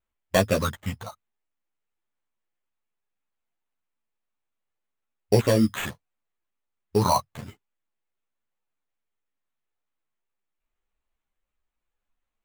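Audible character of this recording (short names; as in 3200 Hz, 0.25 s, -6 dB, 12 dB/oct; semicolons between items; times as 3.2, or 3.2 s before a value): phasing stages 4, 0.79 Hz, lowest notch 320–1400 Hz; aliases and images of a low sample rate 5100 Hz, jitter 0%; a shimmering, thickened sound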